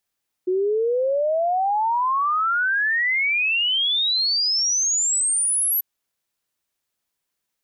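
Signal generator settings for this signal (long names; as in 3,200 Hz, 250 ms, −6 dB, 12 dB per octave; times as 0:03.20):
exponential sine sweep 360 Hz → 12,000 Hz 5.34 s −18 dBFS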